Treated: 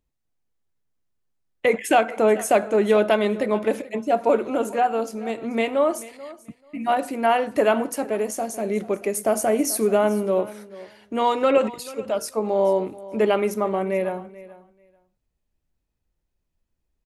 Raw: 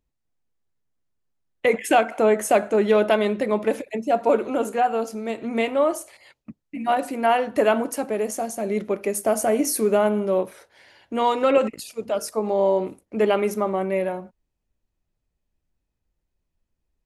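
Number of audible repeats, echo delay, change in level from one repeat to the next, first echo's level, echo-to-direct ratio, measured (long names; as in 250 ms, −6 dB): 2, 436 ms, −16.0 dB, −18.5 dB, −18.5 dB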